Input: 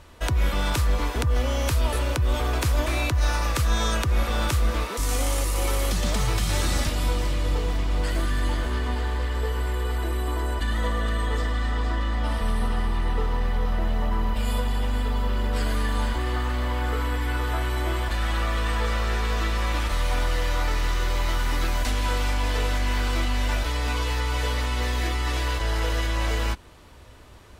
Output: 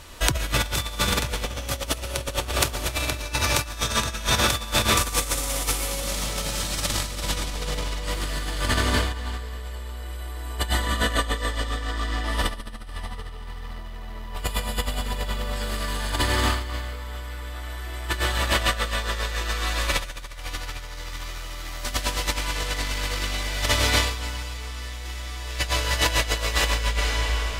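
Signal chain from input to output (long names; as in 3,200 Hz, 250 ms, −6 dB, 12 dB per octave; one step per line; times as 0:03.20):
comb and all-pass reverb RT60 4.5 s, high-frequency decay 0.9×, pre-delay 75 ms, DRR −4 dB
compressor whose output falls as the input rises −23 dBFS, ratio −0.5
high-shelf EQ 2,200 Hz +10.5 dB
level −3.5 dB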